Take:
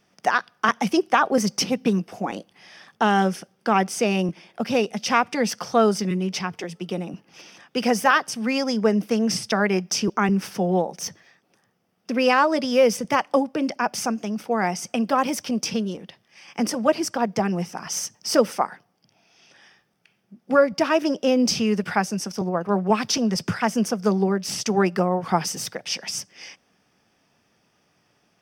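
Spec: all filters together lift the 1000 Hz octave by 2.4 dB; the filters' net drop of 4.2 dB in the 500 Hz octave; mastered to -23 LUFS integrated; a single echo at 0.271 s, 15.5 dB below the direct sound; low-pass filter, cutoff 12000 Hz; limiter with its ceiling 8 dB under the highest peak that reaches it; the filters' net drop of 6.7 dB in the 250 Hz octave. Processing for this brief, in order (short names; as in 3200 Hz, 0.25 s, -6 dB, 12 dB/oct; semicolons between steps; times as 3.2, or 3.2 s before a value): LPF 12000 Hz; bell 250 Hz -8 dB; bell 500 Hz -4.5 dB; bell 1000 Hz +5 dB; limiter -11 dBFS; echo 0.271 s -15.5 dB; gain +3 dB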